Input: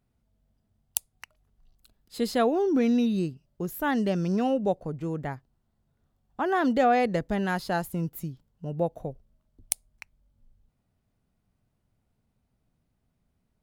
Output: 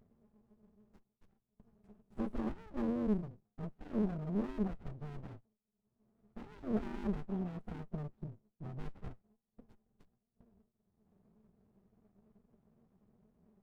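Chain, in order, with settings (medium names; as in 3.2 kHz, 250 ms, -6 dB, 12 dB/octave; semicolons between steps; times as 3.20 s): frequency axis rescaled in octaves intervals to 126%; gate with hold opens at -58 dBFS; upward compressor, threshold -35 dBFS; peak limiter -29.5 dBFS, peak gain reduction 16 dB; two resonant band-passes 360 Hz, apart 1.5 oct; sliding maximum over 65 samples; trim +8.5 dB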